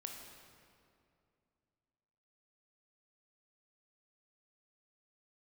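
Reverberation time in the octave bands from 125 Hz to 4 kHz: 3.0, 2.9, 2.6, 2.3, 2.0, 1.6 s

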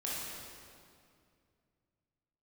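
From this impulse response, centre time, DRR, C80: 0.143 s, -7.0 dB, -0.5 dB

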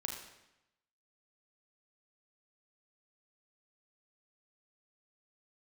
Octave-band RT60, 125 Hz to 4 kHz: 0.95, 0.95, 0.90, 0.90, 0.90, 0.80 s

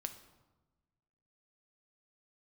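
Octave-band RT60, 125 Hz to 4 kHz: 1.8, 1.5, 1.2, 1.1, 0.85, 0.70 s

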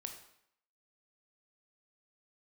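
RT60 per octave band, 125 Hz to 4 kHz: 0.60, 0.70, 0.70, 0.75, 0.70, 0.65 s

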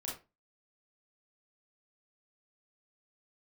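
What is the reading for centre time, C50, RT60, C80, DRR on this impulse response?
36 ms, 5.0 dB, 0.25 s, 12.5 dB, -4.5 dB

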